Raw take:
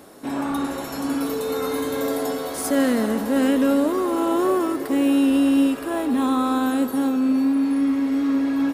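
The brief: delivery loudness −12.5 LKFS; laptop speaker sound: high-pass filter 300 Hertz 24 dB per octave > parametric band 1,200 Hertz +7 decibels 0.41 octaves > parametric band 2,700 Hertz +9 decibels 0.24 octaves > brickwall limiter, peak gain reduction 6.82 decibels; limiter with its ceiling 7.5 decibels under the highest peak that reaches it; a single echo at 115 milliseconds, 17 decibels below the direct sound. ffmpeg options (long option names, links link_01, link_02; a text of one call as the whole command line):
ffmpeg -i in.wav -af "alimiter=limit=-16.5dB:level=0:latency=1,highpass=frequency=300:width=0.5412,highpass=frequency=300:width=1.3066,equalizer=frequency=1200:width_type=o:width=0.41:gain=7,equalizer=frequency=2700:width_type=o:width=0.24:gain=9,aecho=1:1:115:0.141,volume=15.5dB,alimiter=limit=-4dB:level=0:latency=1" out.wav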